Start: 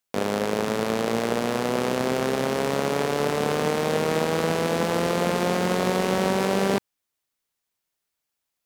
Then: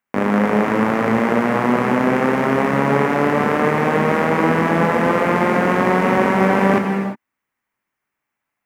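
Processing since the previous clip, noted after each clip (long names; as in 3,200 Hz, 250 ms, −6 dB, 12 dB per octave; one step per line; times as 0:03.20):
graphic EQ with 10 bands 125 Hz +4 dB, 250 Hz +10 dB, 1,000 Hz +8 dB, 2,000 Hz +11 dB, 4,000 Hz −10 dB, 8,000 Hz −4 dB, 16,000 Hz −6 dB
reverb whose tail is shaped and stops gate 380 ms flat, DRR 2.5 dB
level −1 dB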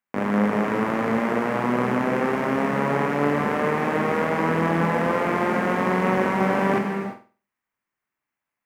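flutter between parallel walls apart 8.3 metres, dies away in 0.36 s
level −6.5 dB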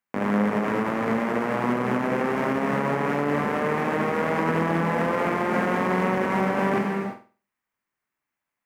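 brickwall limiter −13 dBFS, peak gain reduction 6 dB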